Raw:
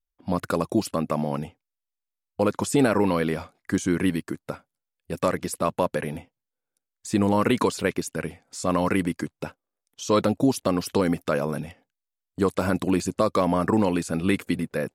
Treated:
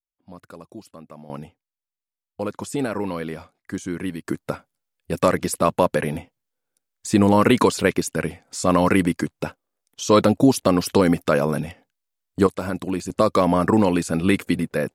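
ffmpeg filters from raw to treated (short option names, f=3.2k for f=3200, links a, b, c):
-af "asetnsamples=n=441:p=0,asendcmd='1.3 volume volume -5dB;4.25 volume volume 5.5dB;12.47 volume volume -3dB;13.1 volume volume 4dB',volume=-16.5dB"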